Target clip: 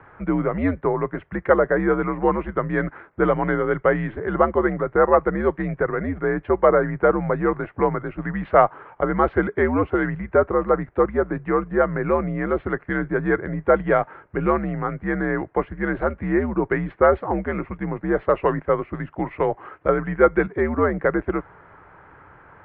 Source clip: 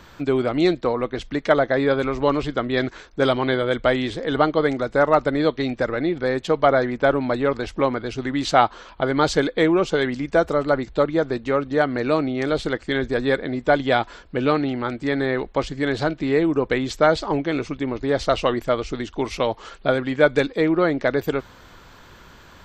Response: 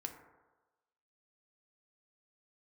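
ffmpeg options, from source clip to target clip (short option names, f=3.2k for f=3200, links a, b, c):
-af "lowshelf=f=130:g=4.5,highpass=f=160:t=q:w=0.5412,highpass=f=160:t=q:w=1.307,lowpass=f=2.1k:t=q:w=0.5176,lowpass=f=2.1k:t=q:w=0.7071,lowpass=f=2.1k:t=q:w=1.932,afreqshift=-87,equalizer=f=230:w=2.6:g=-10.5,volume=1.5dB"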